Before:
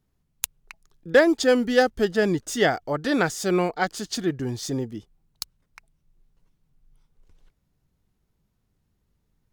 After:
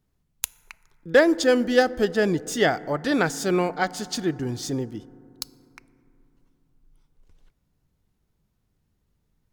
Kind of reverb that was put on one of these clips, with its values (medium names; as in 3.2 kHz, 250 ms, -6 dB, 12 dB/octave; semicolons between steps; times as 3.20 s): FDN reverb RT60 3.1 s, low-frequency decay 1.2×, high-frequency decay 0.25×, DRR 18 dB